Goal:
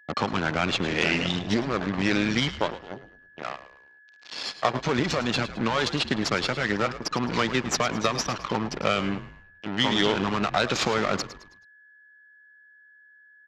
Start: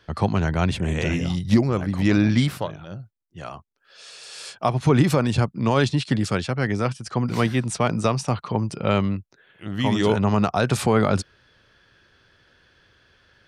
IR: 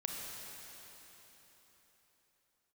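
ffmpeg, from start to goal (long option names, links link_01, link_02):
-filter_complex "[0:a]afftdn=noise_reduction=20:noise_floor=-37,acompressor=threshold=-22dB:ratio=4,crystalizer=i=6:c=0,aresample=16000,acrusher=bits=4:mix=0:aa=0.5,aresample=44100,aeval=exprs='val(0)+0.00224*sin(2*PI*1700*n/s)':channel_layout=same,aeval=exprs='0.473*(cos(1*acos(clip(val(0)/0.473,-1,1)))-cos(1*PI/2))+0.0188*(cos(3*acos(clip(val(0)/0.473,-1,1)))-cos(3*PI/2))+0.0188*(cos(5*acos(clip(val(0)/0.473,-1,1)))-cos(5*PI/2))+0.106*(cos(6*acos(clip(val(0)/0.473,-1,1)))-cos(6*PI/2))+0.0168*(cos(8*acos(clip(val(0)/0.473,-1,1)))-cos(8*PI/2))':channel_layout=same,highpass=200,lowpass=4400,asplit=2[link_01][link_02];[link_02]asplit=4[link_03][link_04][link_05][link_06];[link_03]adelay=107,afreqshift=-71,volume=-13.5dB[link_07];[link_04]adelay=214,afreqshift=-142,volume=-21.5dB[link_08];[link_05]adelay=321,afreqshift=-213,volume=-29.4dB[link_09];[link_06]adelay=428,afreqshift=-284,volume=-37.4dB[link_10];[link_07][link_08][link_09][link_10]amix=inputs=4:normalize=0[link_11];[link_01][link_11]amix=inputs=2:normalize=0"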